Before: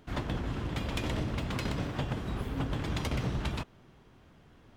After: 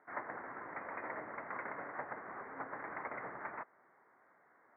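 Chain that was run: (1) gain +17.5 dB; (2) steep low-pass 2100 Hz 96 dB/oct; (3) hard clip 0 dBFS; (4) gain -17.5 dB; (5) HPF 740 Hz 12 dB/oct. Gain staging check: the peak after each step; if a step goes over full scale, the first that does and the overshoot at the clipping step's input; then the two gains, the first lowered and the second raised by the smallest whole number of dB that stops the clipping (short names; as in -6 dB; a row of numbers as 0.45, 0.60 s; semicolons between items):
-1.5, -2.5, -2.5, -20.0, -27.5 dBFS; no overload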